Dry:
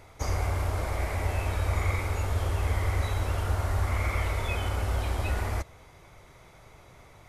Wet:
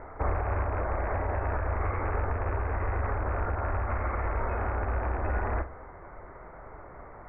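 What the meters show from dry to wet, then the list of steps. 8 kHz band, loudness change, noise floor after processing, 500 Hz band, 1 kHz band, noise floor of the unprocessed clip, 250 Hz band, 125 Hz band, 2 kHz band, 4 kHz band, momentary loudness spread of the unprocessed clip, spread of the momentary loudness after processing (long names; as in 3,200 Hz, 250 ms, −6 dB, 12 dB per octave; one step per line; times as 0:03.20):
below −35 dB, −1.5 dB, −47 dBFS, +2.5 dB, +3.0 dB, −54 dBFS, +1.0 dB, −3.5 dB, −1.0 dB, below −25 dB, 3 LU, 16 LU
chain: loose part that buzzes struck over −27 dBFS, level −21 dBFS
Butterworth low-pass 1,800 Hz 48 dB per octave
parametric band 120 Hz −10.5 dB 1.2 octaves
downward compressor, threshold −31 dBFS, peak gain reduction 6 dB
brickwall limiter −29.5 dBFS, peak gain reduction 5 dB
speech leveller 0.5 s
flutter between parallel walls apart 7.7 metres, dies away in 0.24 s
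level +8.5 dB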